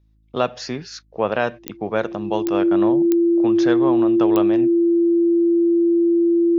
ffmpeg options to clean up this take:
ffmpeg -i in.wav -af "adeclick=threshold=4,bandreject=frequency=53.5:width_type=h:width=4,bandreject=frequency=107:width_type=h:width=4,bandreject=frequency=160.5:width_type=h:width=4,bandreject=frequency=214:width_type=h:width=4,bandreject=frequency=267.5:width_type=h:width=4,bandreject=frequency=321:width_type=h:width=4,bandreject=frequency=340:width=30" out.wav

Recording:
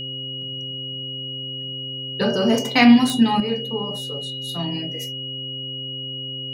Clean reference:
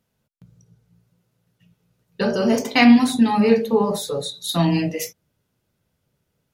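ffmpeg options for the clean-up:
ffmpeg -i in.wav -af "adeclick=threshold=4,bandreject=frequency=131.9:width_type=h:width=4,bandreject=frequency=263.8:width_type=h:width=4,bandreject=frequency=395.7:width_type=h:width=4,bandreject=frequency=527.6:width_type=h:width=4,bandreject=frequency=2900:width=30,asetnsamples=nb_out_samples=441:pad=0,asendcmd='3.4 volume volume 9.5dB',volume=0dB" out.wav

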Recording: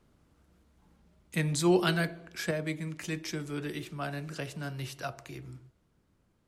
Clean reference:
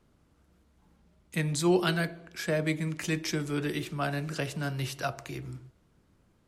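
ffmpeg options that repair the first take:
ffmpeg -i in.wav -af "asetnsamples=nb_out_samples=441:pad=0,asendcmd='2.51 volume volume 5dB',volume=0dB" out.wav

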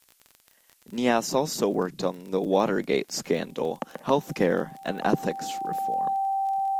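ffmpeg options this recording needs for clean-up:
ffmpeg -i in.wav -af "adeclick=threshold=4,bandreject=frequency=780:width=30,agate=range=-21dB:threshold=-51dB" out.wav

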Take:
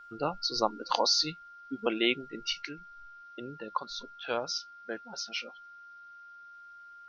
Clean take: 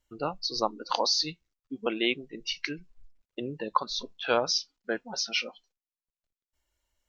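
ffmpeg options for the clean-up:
ffmpeg -i in.wav -af "bandreject=frequency=1400:width=30,agate=range=-21dB:threshold=-43dB,asetnsamples=nb_out_samples=441:pad=0,asendcmd='2.62 volume volume 7dB',volume=0dB" out.wav

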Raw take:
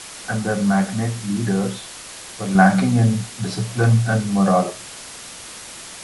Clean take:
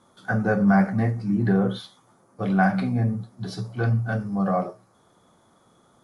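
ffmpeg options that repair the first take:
ffmpeg -i in.wav -af "afwtdn=0.02,asetnsamples=nb_out_samples=441:pad=0,asendcmd='2.55 volume volume -7dB',volume=0dB" out.wav

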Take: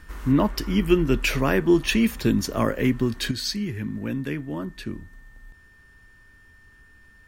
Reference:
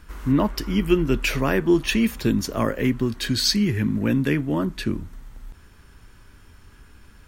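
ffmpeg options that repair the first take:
ffmpeg -i in.wav -af "bandreject=frequency=1800:width=30,asetnsamples=nb_out_samples=441:pad=0,asendcmd='3.31 volume volume 7.5dB',volume=0dB" out.wav

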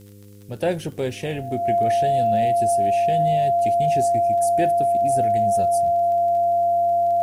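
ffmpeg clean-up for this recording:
ffmpeg -i in.wav -af "adeclick=threshold=4,bandreject=frequency=101.6:width_type=h:width=4,bandreject=frequency=203.2:width_type=h:width=4,bandreject=frequency=304.8:width_type=h:width=4,bandreject=frequency=406.4:width_type=h:width=4,bandreject=frequency=508:width_type=h:width=4,bandreject=frequency=690:width=30,agate=range=-21dB:threshold=-27dB" out.wav

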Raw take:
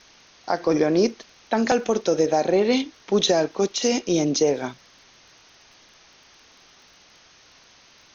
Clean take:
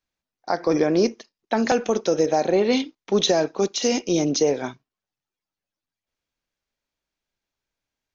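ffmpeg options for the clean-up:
ffmpeg -i in.wav -af "adeclick=threshold=4,afwtdn=0.004" out.wav

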